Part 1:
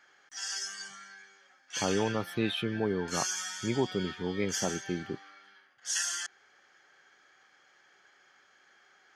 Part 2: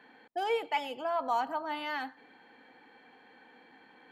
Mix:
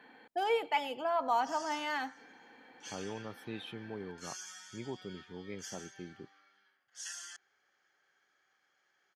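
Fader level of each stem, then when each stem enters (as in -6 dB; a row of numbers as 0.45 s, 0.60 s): -12.5 dB, 0.0 dB; 1.10 s, 0.00 s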